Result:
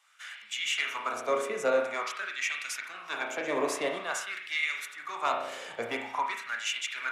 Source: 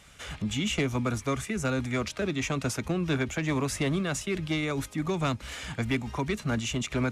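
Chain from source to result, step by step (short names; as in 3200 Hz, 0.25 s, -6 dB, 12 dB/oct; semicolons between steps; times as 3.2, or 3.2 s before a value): spring tank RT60 1 s, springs 34 ms, chirp 55 ms, DRR 1.5 dB; LFO high-pass sine 0.48 Hz 490–2000 Hz; three-band expander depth 40%; gain -3 dB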